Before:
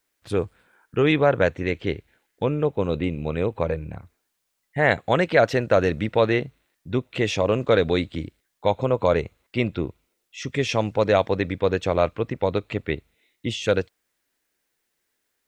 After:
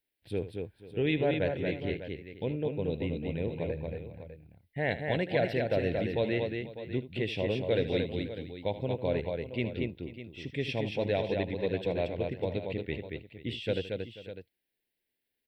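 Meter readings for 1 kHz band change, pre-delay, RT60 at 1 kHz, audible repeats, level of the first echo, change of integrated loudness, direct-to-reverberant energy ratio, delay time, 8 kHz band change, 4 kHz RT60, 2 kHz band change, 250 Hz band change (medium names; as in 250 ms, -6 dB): -14.0 dB, no reverb, no reverb, 4, -14.0 dB, -9.5 dB, no reverb, 77 ms, under -20 dB, no reverb, -10.5 dB, -7.5 dB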